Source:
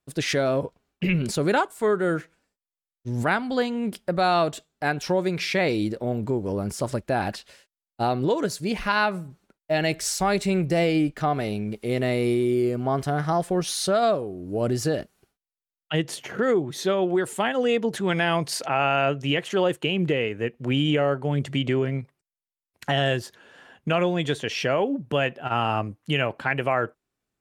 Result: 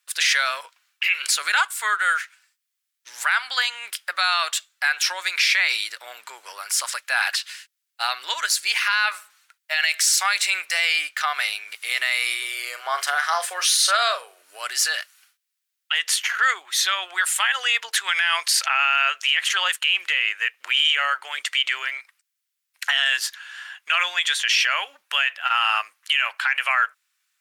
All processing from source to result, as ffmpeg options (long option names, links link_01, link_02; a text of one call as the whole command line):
ffmpeg -i in.wav -filter_complex "[0:a]asettb=1/sr,asplit=3[link_01][link_02][link_03];[link_01]atrim=end=12.424[link_04];[link_02]atrim=start=12.42:end=14.42,asetpts=PTS-STARTPTS,afade=type=in:duration=0.004:curve=qsin,afade=type=out:start_time=1.996:duration=0.004:curve=qsin,highpass=frequency=480:width_type=q:width=2.5,asplit=2[link_05][link_06];[link_06]adelay=42,volume=-11dB[link_07];[link_05][link_07]amix=inputs=2:normalize=0,atrim=end_sample=88200[link_08];[link_03]atrim=start=14.416[link_09];[link_04][link_08]acrossfade=duration=0.004:curve1=hsin:curve2=qsin[link_10];[link_10][link_09]acrossfade=duration=0.004:curve1=qsin:curve2=hsin,highpass=frequency=1400:width=0.5412,highpass=frequency=1400:width=1.3066,acontrast=44,alimiter=limit=-18.5dB:level=0:latency=1:release=33,volume=9dB" out.wav